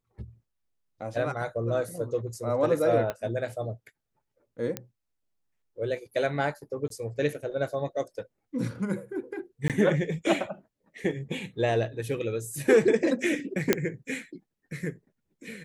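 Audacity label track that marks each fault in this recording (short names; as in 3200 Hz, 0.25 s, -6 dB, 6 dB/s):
3.100000	3.100000	pop -17 dBFS
4.770000	4.770000	pop -14 dBFS
6.880000	6.900000	gap 23 ms
9.680000	9.700000	gap 17 ms
13.730000	13.730000	pop -5 dBFS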